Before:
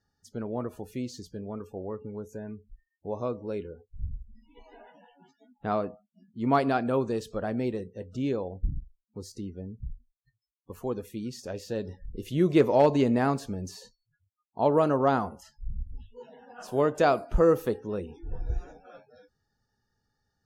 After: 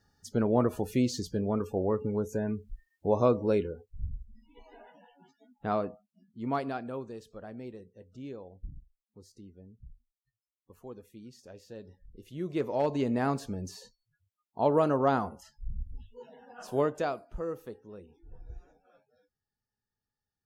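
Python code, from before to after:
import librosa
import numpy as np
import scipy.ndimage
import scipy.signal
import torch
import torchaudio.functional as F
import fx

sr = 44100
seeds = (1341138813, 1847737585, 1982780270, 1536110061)

y = fx.gain(x, sr, db=fx.line((3.52, 7.5), (4.02, -1.5), (5.89, -1.5), (7.13, -13.0), (12.33, -13.0), (13.4, -2.0), (16.79, -2.0), (17.26, -14.5)))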